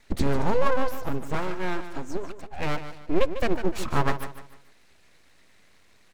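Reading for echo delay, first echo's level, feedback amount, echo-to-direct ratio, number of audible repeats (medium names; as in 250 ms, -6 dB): 149 ms, -11.0 dB, 35%, -10.5 dB, 3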